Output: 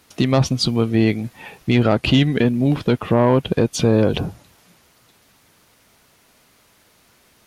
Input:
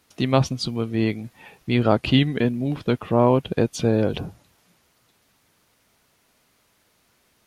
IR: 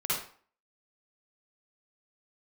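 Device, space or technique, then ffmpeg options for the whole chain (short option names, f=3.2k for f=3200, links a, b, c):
soft clipper into limiter: -af "asoftclip=type=tanh:threshold=-10dB,alimiter=limit=-15dB:level=0:latency=1:release=198,volume=8dB"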